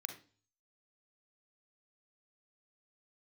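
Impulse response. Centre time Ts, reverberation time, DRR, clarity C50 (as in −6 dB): 13 ms, 0.40 s, 5.5 dB, 9.0 dB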